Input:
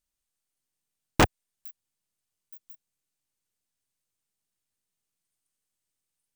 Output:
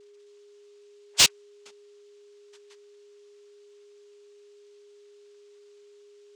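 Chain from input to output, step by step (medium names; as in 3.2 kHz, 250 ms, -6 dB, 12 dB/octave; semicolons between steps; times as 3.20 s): split-band scrambler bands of 4 kHz; FFT band-reject 460–1200 Hz; noise-vocoded speech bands 4; overdrive pedal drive 26 dB, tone 4.2 kHz, clips at -6.5 dBFS; whistle 410 Hz -51 dBFS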